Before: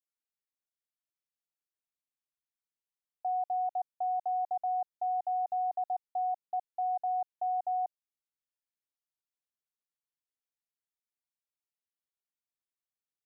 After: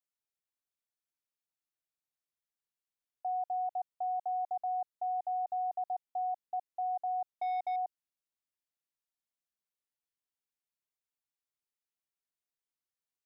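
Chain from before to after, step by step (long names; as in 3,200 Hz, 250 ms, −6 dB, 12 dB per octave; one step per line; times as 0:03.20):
0:07.30–0:07.76: leveller curve on the samples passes 1
level −2.5 dB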